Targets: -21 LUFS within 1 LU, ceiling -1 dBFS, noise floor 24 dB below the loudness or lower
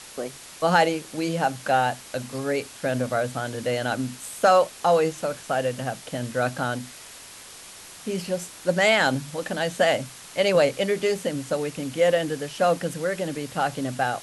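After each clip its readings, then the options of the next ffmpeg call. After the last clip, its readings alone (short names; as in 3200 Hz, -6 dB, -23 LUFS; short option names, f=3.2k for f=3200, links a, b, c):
noise floor -44 dBFS; noise floor target -49 dBFS; loudness -24.5 LUFS; peak -6.0 dBFS; loudness target -21.0 LUFS
-> -af "afftdn=nr=6:nf=-44"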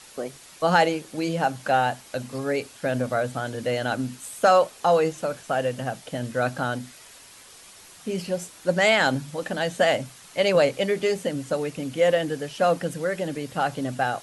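noise floor -48 dBFS; noise floor target -49 dBFS
-> -af "afftdn=nr=6:nf=-48"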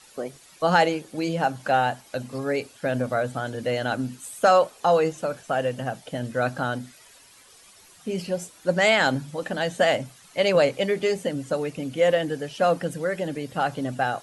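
noise floor -52 dBFS; loudness -24.5 LUFS; peak -6.0 dBFS; loudness target -21.0 LUFS
-> -af "volume=3.5dB"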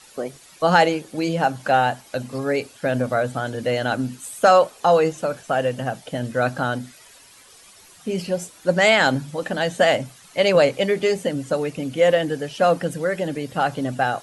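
loudness -21.0 LUFS; peak -2.5 dBFS; noise floor -49 dBFS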